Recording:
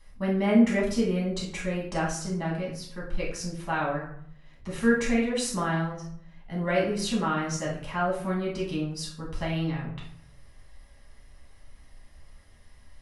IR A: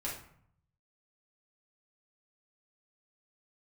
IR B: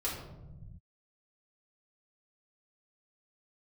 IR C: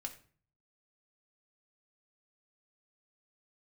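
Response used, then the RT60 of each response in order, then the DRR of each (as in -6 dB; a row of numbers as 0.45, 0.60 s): A; 0.65, 1.0, 0.45 s; -5.5, -7.0, 2.0 dB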